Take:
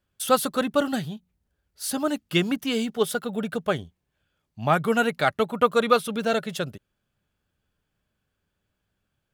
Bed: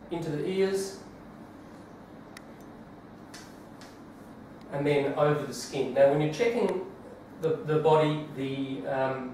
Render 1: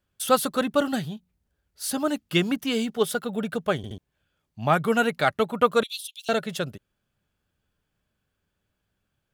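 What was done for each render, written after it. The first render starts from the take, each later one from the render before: 3.77 stutter in place 0.07 s, 3 plays; 5.83–6.29 steep high-pass 2900 Hz 48 dB/oct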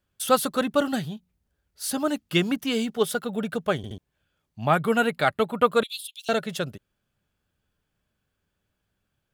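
4.65–6.15 bell 5900 Hz -13 dB 0.21 oct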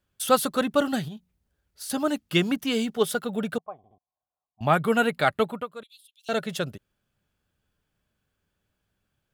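1.08–1.9 compressor, threshold -34 dBFS; 3.58–4.61 vocal tract filter a; 5.47–6.39 dip -18.5 dB, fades 0.19 s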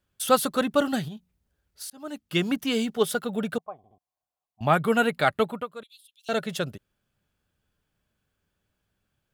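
1.9–2.55 fade in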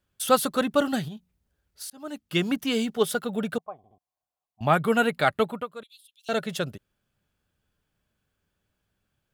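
nothing audible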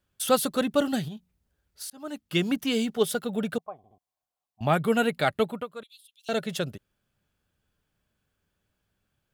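dynamic EQ 1200 Hz, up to -5 dB, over -37 dBFS, Q 1.1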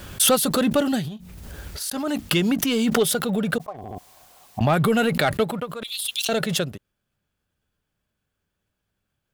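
sample leveller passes 1; backwards sustainer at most 22 dB/s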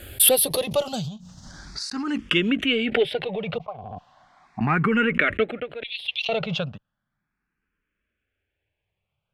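low-pass sweep 14000 Hz -> 2400 Hz, 0.05–2.87; endless phaser +0.36 Hz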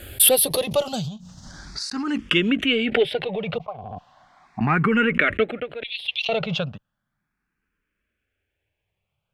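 gain +1.5 dB; limiter -3 dBFS, peak gain reduction 2 dB

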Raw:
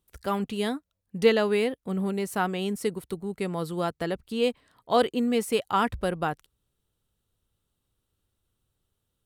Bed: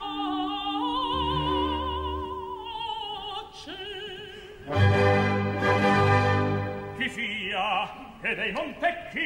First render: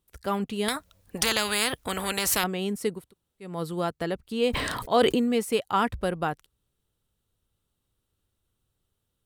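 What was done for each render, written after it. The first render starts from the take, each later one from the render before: 0.68–2.44 spectral compressor 4:1; 3.02–3.5 room tone, crossfade 0.24 s; 4.48–5.32 sustainer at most 23 dB/s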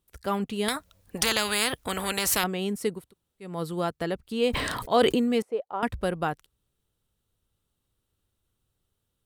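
5.42–5.83 band-pass 570 Hz, Q 2.1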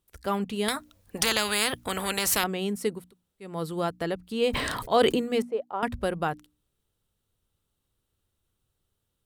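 notches 60/120/180/240/300 Hz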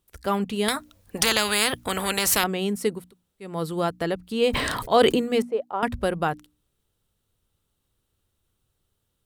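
gain +3.5 dB

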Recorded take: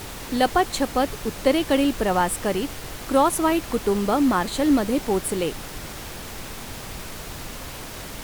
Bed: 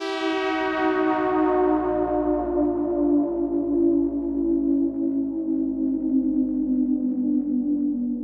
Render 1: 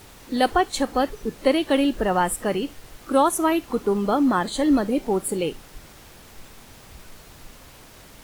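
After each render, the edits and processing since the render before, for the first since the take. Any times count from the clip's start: noise print and reduce 11 dB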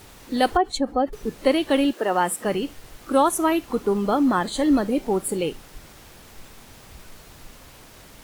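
0.57–1.13 spectral contrast raised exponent 1.6; 1.91–2.44 HPF 360 Hz -> 120 Hz 24 dB/oct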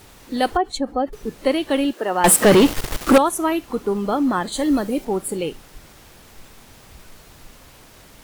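2.24–3.18 sample leveller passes 5; 4.52–5.05 high shelf 6400 Hz +7.5 dB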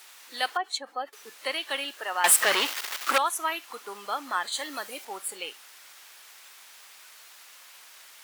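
HPF 1300 Hz 12 dB/oct; dynamic EQ 9900 Hz, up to -5 dB, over -42 dBFS, Q 0.85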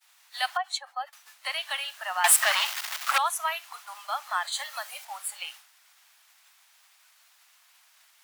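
expander -42 dBFS; steep high-pass 620 Hz 72 dB/oct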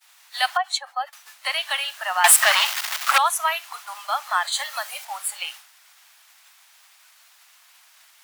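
gain +6.5 dB; limiter -3 dBFS, peak gain reduction 1.5 dB

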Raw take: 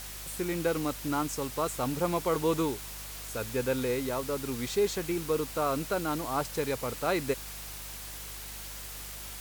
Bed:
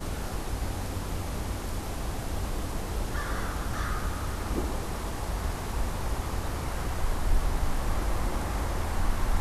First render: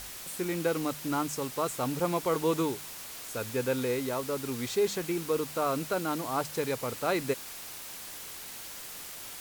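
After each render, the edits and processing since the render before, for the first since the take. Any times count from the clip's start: de-hum 50 Hz, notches 4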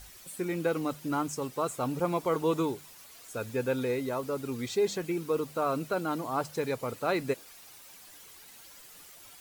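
denoiser 11 dB, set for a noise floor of -43 dBFS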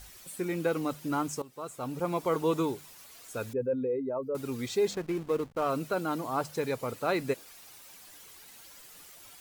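1.42–2.27 fade in linear, from -17 dB; 3.53–4.35 spectral contrast raised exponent 2; 4.91–5.7 backlash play -34.5 dBFS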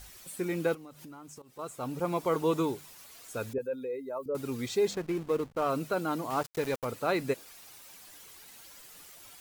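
0.74–1.59 compressor 8:1, threshold -45 dBFS; 3.58–4.26 tilt +4.5 dB/oct; 6.3–6.85 sample gate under -37 dBFS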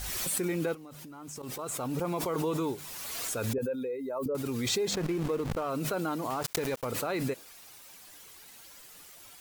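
limiter -23.5 dBFS, peak gain reduction 7 dB; backwards sustainer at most 21 dB/s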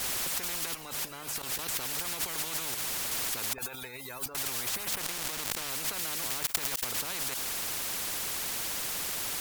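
in parallel at +2.5 dB: level quantiser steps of 19 dB; on the sum: spectral compressor 10:1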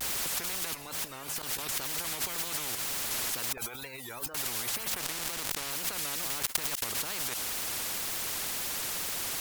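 wow and flutter 150 cents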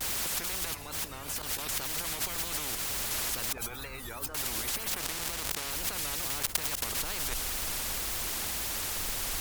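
add bed -16.5 dB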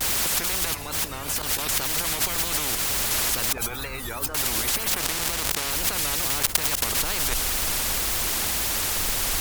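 gain +8.5 dB; limiter -1 dBFS, peak gain reduction 1.5 dB

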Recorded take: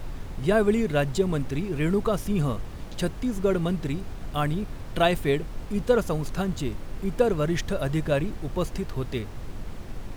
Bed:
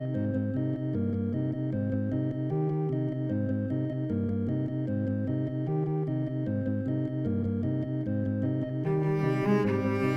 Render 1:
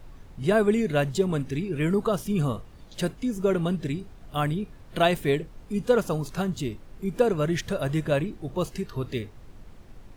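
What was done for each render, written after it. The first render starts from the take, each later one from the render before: noise print and reduce 11 dB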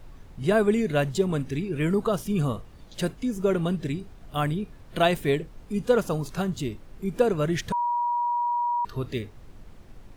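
7.72–8.85 bleep 959 Hz -22.5 dBFS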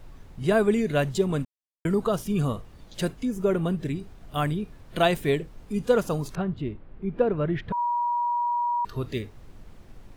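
1.45–1.85 mute; 3.24–3.96 dynamic EQ 4800 Hz, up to -6 dB, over -49 dBFS, Q 0.72; 6.35–7.78 air absorption 450 m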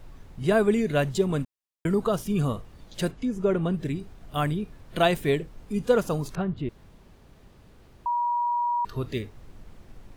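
3.11–3.74 air absorption 54 m; 6.69–8.06 room tone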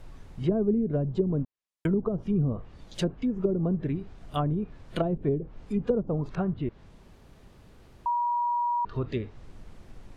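dynamic EQ 1900 Hz, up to -5 dB, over -48 dBFS, Q 3.9; treble ducked by the level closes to 350 Hz, closed at -20 dBFS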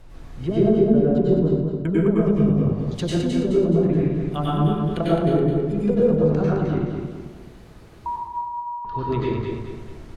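feedback echo 0.212 s, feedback 41%, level -5 dB; plate-style reverb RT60 0.79 s, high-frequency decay 0.75×, pre-delay 85 ms, DRR -6 dB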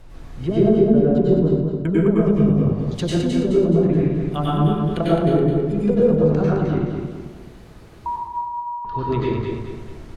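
gain +2 dB; limiter -3 dBFS, peak gain reduction 0.5 dB

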